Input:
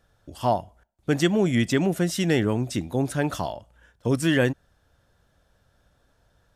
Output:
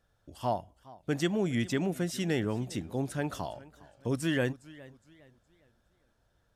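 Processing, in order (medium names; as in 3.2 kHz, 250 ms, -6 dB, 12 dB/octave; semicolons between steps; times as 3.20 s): modulated delay 412 ms, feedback 35%, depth 131 cents, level -20.5 dB; trim -8 dB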